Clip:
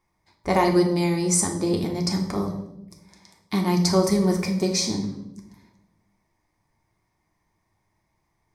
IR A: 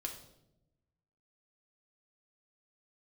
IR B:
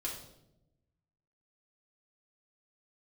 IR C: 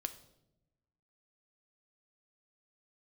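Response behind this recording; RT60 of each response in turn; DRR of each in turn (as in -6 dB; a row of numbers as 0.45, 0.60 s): A; 0.90, 0.85, 0.90 s; 1.5, -4.0, 8.5 dB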